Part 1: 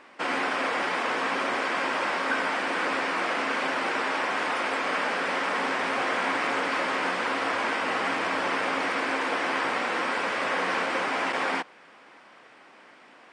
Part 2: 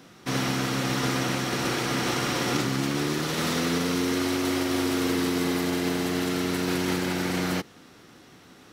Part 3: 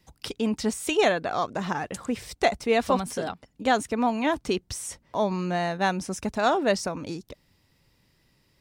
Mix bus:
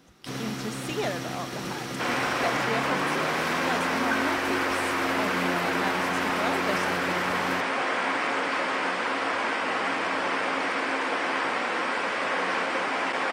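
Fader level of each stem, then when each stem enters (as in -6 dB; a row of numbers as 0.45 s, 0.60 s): 0.0 dB, -7.5 dB, -9.0 dB; 1.80 s, 0.00 s, 0.00 s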